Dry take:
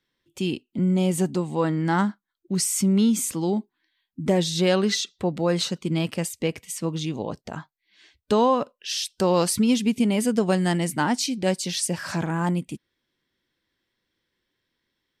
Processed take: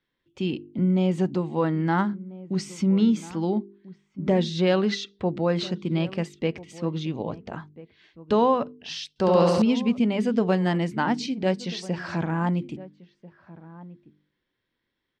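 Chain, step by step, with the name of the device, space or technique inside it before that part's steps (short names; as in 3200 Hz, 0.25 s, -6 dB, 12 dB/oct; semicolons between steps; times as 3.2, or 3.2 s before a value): shout across a valley (air absorption 190 m; outdoor echo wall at 230 m, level -18 dB); de-hum 49.91 Hz, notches 9; 9.09–9.62 flutter echo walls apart 11.8 m, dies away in 1.5 s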